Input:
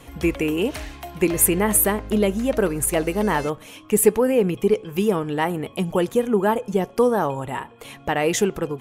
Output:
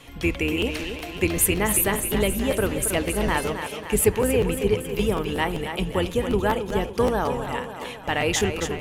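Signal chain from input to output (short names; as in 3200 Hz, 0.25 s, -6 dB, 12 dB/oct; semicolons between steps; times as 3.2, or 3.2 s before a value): octaver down 2 oct, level -2 dB; bell 3200 Hz +8 dB 1.8 oct; thinning echo 0.274 s, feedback 59%, high-pass 160 Hz, level -8 dB; on a send at -19 dB: reverb RT60 1.1 s, pre-delay 3 ms; on the sum: crackling interface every 0.19 s, samples 512, repeat, from 0.6; gain -4.5 dB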